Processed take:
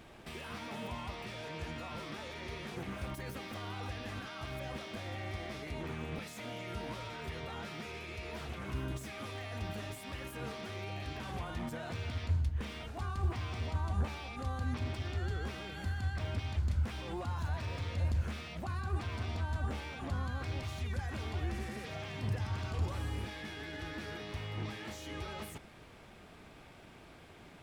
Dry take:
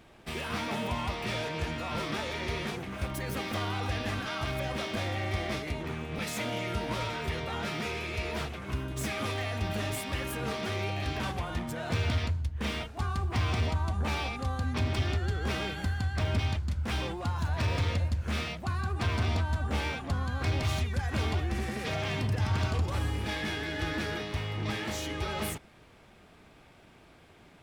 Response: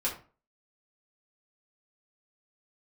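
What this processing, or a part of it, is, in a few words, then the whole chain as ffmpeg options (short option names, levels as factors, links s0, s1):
de-esser from a sidechain: -filter_complex "[0:a]asplit=2[s0][s1];[s1]highpass=f=4500:p=1,apad=whole_len=1218073[s2];[s0][s2]sidechaincompress=threshold=0.00178:ratio=4:attack=2.3:release=26,volume=1.19"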